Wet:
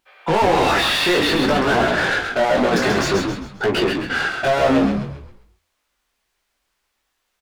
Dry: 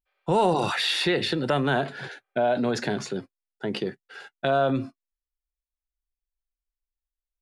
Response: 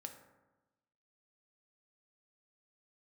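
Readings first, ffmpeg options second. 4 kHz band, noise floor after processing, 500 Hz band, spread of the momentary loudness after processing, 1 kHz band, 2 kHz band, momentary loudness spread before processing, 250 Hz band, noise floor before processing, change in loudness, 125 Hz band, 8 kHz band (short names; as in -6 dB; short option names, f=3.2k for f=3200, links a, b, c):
+7.5 dB, -73 dBFS, +7.0 dB, 6 LU, +8.0 dB, +11.5 dB, 13 LU, +8.5 dB, under -85 dBFS, +7.5 dB, +5.0 dB, +10.0 dB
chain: -filter_complex "[0:a]equalizer=f=230:w=1.1:g=4,bandreject=f=60:t=h:w=6,bandreject=f=120:t=h:w=6,bandreject=f=180:t=h:w=6,bandreject=f=240:t=h:w=6,asplit=2[a][b];[b]acompressor=threshold=-36dB:ratio=6,volume=2dB[c];[a][c]amix=inputs=2:normalize=0,asplit=2[d][e];[e]highpass=f=720:p=1,volume=32dB,asoftclip=type=tanh:threshold=-8dB[f];[d][f]amix=inputs=2:normalize=0,lowpass=f=2.5k:p=1,volume=-6dB,flanger=delay=16.5:depth=7.3:speed=0.55,asplit=2[g][h];[h]asplit=5[i][j][k][l][m];[i]adelay=133,afreqshift=-65,volume=-5dB[n];[j]adelay=266,afreqshift=-130,volume=-13.4dB[o];[k]adelay=399,afreqshift=-195,volume=-21.8dB[p];[l]adelay=532,afreqshift=-260,volume=-30.2dB[q];[m]adelay=665,afreqshift=-325,volume=-38.6dB[r];[n][o][p][q][r]amix=inputs=5:normalize=0[s];[g][s]amix=inputs=2:normalize=0"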